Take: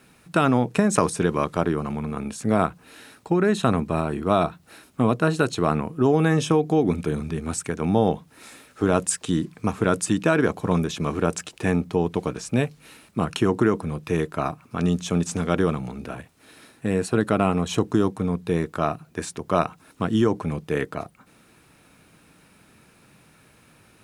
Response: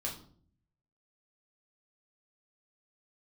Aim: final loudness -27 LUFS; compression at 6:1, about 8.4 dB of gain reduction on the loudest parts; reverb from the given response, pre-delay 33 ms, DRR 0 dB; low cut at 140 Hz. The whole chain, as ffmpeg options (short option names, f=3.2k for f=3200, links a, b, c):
-filter_complex "[0:a]highpass=140,acompressor=threshold=-24dB:ratio=6,asplit=2[a][b];[1:a]atrim=start_sample=2205,adelay=33[c];[b][c]afir=irnorm=-1:irlink=0,volume=-1.5dB[d];[a][d]amix=inputs=2:normalize=0,volume=-0.5dB"